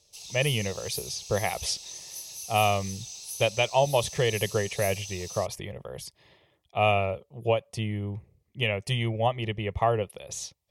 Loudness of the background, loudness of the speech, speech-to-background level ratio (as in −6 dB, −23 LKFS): −37.5 LKFS, −28.5 LKFS, 9.0 dB